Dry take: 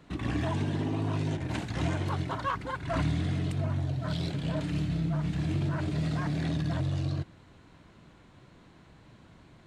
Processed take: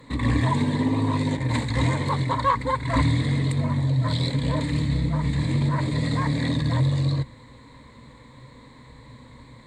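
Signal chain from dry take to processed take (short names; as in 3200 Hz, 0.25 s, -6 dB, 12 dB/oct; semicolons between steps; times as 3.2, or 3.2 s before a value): ripple EQ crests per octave 1, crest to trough 14 dB; gain +6 dB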